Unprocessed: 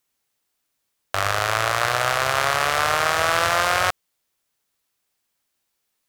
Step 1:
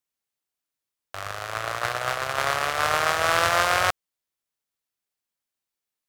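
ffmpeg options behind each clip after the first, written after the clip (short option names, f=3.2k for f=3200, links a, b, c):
-af "agate=range=-12dB:threshold=-19dB:ratio=16:detection=peak"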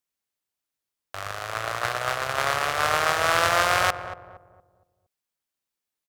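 -filter_complex "[0:a]asplit=2[a][b];[b]adelay=232,lowpass=f=830:p=1,volume=-9dB,asplit=2[c][d];[d]adelay=232,lowpass=f=830:p=1,volume=0.43,asplit=2[e][f];[f]adelay=232,lowpass=f=830:p=1,volume=0.43,asplit=2[g][h];[h]adelay=232,lowpass=f=830:p=1,volume=0.43,asplit=2[i][j];[j]adelay=232,lowpass=f=830:p=1,volume=0.43[k];[a][c][e][g][i][k]amix=inputs=6:normalize=0"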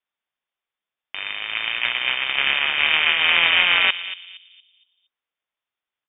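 -af "lowpass=f=3.1k:t=q:w=0.5098,lowpass=f=3.1k:t=q:w=0.6013,lowpass=f=3.1k:t=q:w=0.9,lowpass=f=3.1k:t=q:w=2.563,afreqshift=-3700,volume=4.5dB"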